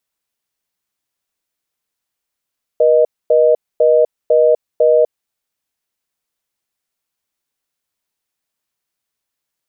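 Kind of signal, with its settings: call progress tone reorder tone, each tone -10.5 dBFS 2.43 s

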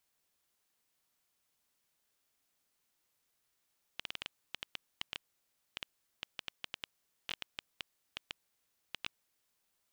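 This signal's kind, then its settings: random clicks 6 per s -20.5 dBFS 5.62 s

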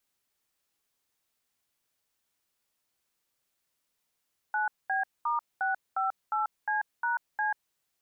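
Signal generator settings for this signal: DTMF "9B*658C#C", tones 139 ms, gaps 217 ms, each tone -28.5 dBFS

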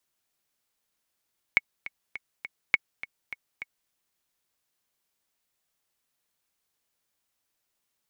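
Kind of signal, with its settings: metronome 205 bpm, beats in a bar 4, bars 2, 2.21 kHz, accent 16.5 dB -6 dBFS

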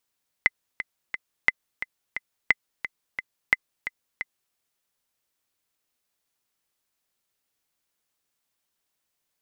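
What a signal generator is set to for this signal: metronome 176 bpm, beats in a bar 3, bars 4, 2.04 kHz, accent 12 dB -4 dBFS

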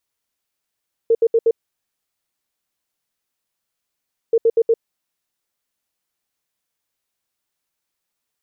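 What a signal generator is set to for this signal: beep pattern sine 457 Hz, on 0.05 s, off 0.07 s, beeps 4, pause 2.82 s, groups 2, -10.5 dBFS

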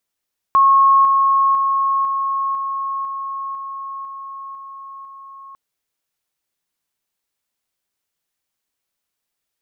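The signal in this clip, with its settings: level ladder 1.09 kHz -8.5 dBFS, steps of -3 dB, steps 10, 0.50 s 0.00 s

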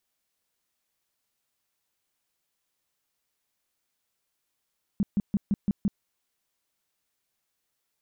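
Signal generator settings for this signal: tone bursts 202 Hz, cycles 6, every 0.17 s, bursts 6, -20 dBFS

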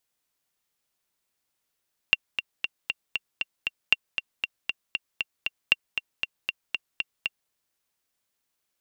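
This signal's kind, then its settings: metronome 234 bpm, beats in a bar 7, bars 3, 2.76 kHz, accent 9 dB -4 dBFS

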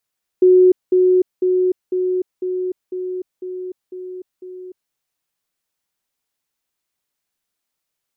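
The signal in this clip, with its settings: level ladder 367 Hz -7 dBFS, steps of -3 dB, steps 9, 0.30 s 0.20 s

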